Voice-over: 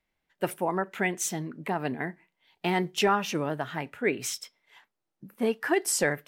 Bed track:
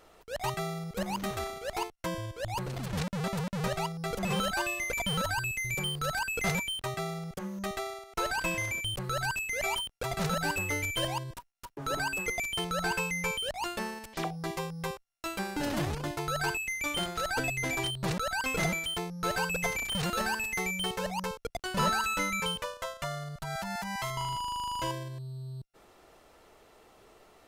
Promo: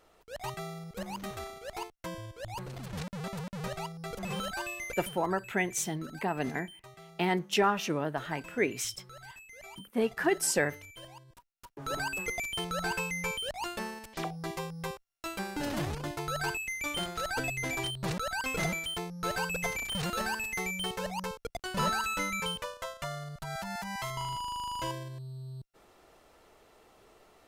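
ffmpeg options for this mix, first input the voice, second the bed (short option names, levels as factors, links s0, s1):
-filter_complex "[0:a]adelay=4550,volume=0.794[s0];[1:a]volume=3.16,afade=t=out:st=4.89:d=0.28:silence=0.251189,afade=t=in:st=11.27:d=0.68:silence=0.16788[s1];[s0][s1]amix=inputs=2:normalize=0"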